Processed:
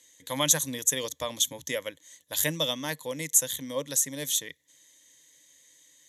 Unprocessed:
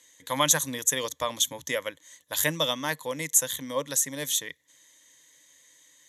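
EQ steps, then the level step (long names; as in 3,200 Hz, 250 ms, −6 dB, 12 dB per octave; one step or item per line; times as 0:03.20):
parametric band 1,200 Hz −7.5 dB 1.4 octaves
0.0 dB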